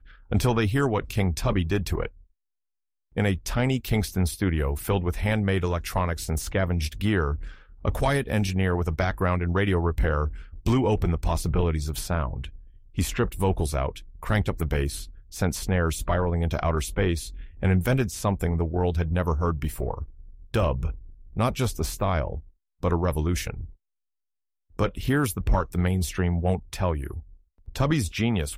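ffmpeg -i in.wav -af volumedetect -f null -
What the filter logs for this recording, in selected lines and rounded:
mean_volume: -25.7 dB
max_volume: -10.8 dB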